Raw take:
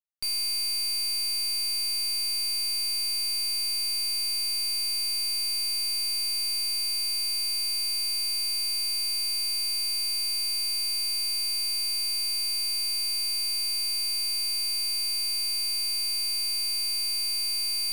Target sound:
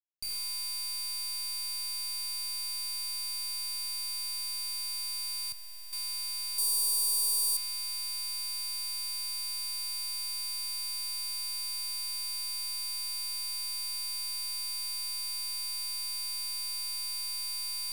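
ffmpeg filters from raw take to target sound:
-filter_complex "[0:a]bandreject=f=46.37:t=h:w=4,bandreject=f=92.74:t=h:w=4,bandreject=f=139.11:t=h:w=4,bandreject=f=185.48:t=h:w=4,bandreject=f=231.85:t=h:w=4,bandreject=f=278.22:t=h:w=4,bandreject=f=324.59:t=h:w=4,bandreject=f=370.96:t=h:w=4,bandreject=f=417.33:t=h:w=4,bandreject=f=463.7:t=h:w=4,bandreject=f=510.07:t=h:w=4,bandreject=f=556.44:t=h:w=4,bandreject=f=602.81:t=h:w=4,bandreject=f=649.18:t=h:w=4,bandreject=f=695.55:t=h:w=4,bandreject=f=741.92:t=h:w=4,bandreject=f=788.29:t=h:w=4,bandreject=f=834.66:t=h:w=4,bandreject=f=881.03:t=h:w=4,bandreject=f=927.4:t=h:w=4,bandreject=f=973.77:t=h:w=4,bandreject=f=1020.14:t=h:w=4,bandreject=f=1066.51:t=h:w=4,bandreject=f=1112.88:t=h:w=4,bandreject=f=1159.25:t=h:w=4,bandreject=f=1205.62:t=h:w=4,bandreject=f=1251.99:t=h:w=4,bandreject=f=1298.36:t=h:w=4,bandreject=f=1344.73:t=h:w=4,bandreject=f=1391.1:t=h:w=4,bandreject=f=1437.47:t=h:w=4,bandreject=f=1483.84:t=h:w=4,alimiter=level_in=2.99:limit=0.0631:level=0:latency=1,volume=0.335,acrusher=bits=5:dc=4:mix=0:aa=0.000001,highshelf=f=2800:g=8.5,asettb=1/sr,asplit=3[s0][s1][s2];[s0]atrim=end=5.524[s3];[s1]atrim=start=5.52:end=5.93,asetpts=PTS-STARTPTS,afade=t=in:d=0.004:c=qsin,afade=t=out:st=0.406:d=0.004:c=qsin,acrossover=split=180[s4][s5];[s5]acompressor=threshold=0.002:ratio=2[s6];[s4][s6]amix=inputs=2:normalize=0[s7];[s2]atrim=start=5.926[s8];[s3][s7]acrossfade=d=0.004:c1=hsin:c2=qsin[s9];[s9][s8]acrossfade=d=0.004:c1=qsin:c2=hsin,acrusher=bits=2:mode=log:mix=0:aa=0.000001,asettb=1/sr,asplit=3[s10][s11][s12];[s10]atrim=end=6.584[s13];[s11]atrim=start=6.58:end=7.57,asetpts=PTS-STARTPTS,afade=t=in:d=0.004:c=qsin,afade=t=out:st=0.986:d=0.004:c=qsin,equalizer=f=125:t=o:w=1:g=-3,equalizer=f=500:t=o:w=1:g=12,equalizer=f=1000:t=o:w=1:g=3,equalizer=f=2000:t=o:w=1:g=-9,equalizer=f=8000:t=o:w=1:g=6,equalizer=f=16000:t=o:w=1:g=12[s14];[s12]atrim=start=7.566[s15];[s13][s14]acrossfade=d=0.004:c1=hsin:c2=qsin[s16];[s16][s15]acrossfade=d=0.004:c1=qsin:c2=hsin,volume=0.708"

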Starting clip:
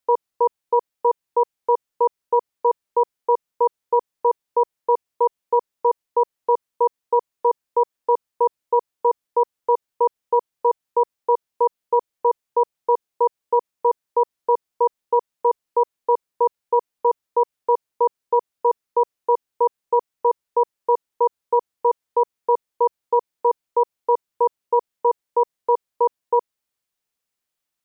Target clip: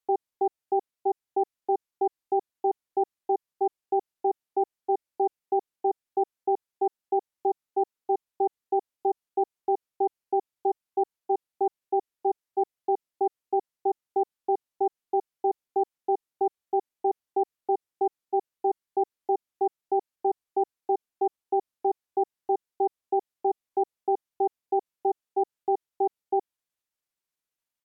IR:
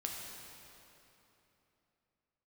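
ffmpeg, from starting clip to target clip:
-af "asetrate=36028,aresample=44100,atempo=1.22405,volume=0.447"

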